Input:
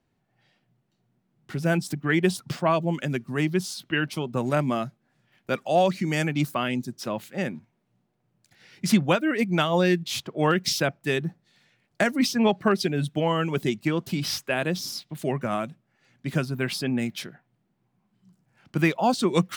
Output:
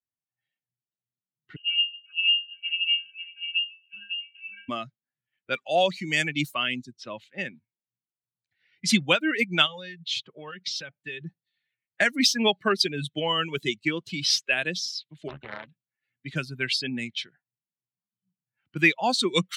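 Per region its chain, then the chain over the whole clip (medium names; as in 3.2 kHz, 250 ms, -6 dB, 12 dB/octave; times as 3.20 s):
1.56–4.69 s: pitch-class resonator F, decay 0.4 s + delay 549 ms -4 dB + frequency inversion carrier 3 kHz
9.66–11.21 s: compression 12:1, threshold -26 dBFS + comb of notches 340 Hz
15.28–15.68 s: treble shelf 11 kHz -4.5 dB + AM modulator 78 Hz, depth 65% + loudspeaker Doppler distortion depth 0.92 ms
whole clip: expander on every frequency bin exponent 1.5; level-controlled noise filter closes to 2 kHz, open at -25 dBFS; frequency weighting D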